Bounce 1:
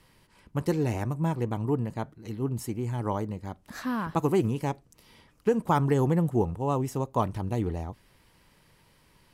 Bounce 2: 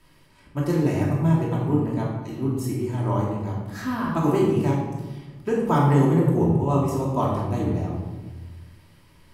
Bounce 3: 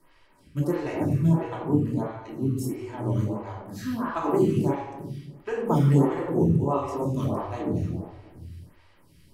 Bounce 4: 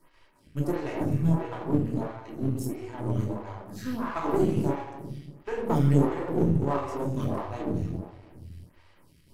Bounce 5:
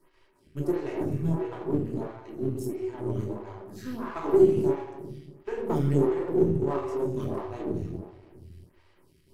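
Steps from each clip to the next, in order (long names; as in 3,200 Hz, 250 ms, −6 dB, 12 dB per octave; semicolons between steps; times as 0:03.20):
rectangular room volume 760 cubic metres, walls mixed, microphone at 2.8 metres; level −2 dB
phaser with staggered stages 1.5 Hz
gain on one half-wave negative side −7 dB
parametric band 380 Hz +14 dB 0.21 octaves; level −4 dB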